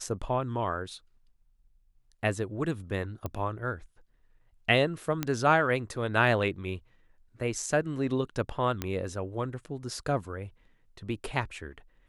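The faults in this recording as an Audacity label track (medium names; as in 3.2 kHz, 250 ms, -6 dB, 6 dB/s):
3.260000	3.260000	pop -20 dBFS
5.230000	5.230000	pop -14 dBFS
8.820000	8.820000	pop -15 dBFS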